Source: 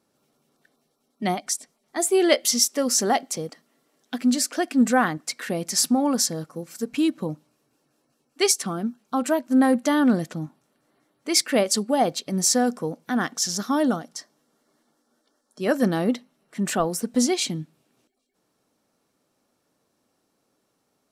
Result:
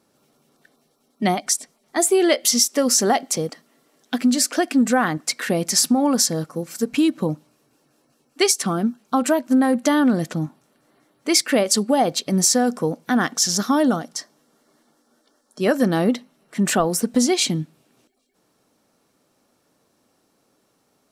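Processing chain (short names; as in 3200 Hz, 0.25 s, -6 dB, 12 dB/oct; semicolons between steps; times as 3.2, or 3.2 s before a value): compressor, threshold -20 dBFS, peak gain reduction 8 dB; gain +6.5 dB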